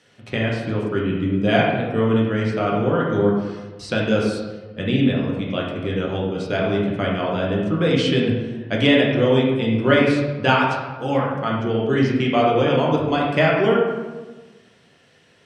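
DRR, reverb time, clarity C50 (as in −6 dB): −4.0 dB, 1.3 s, 1.0 dB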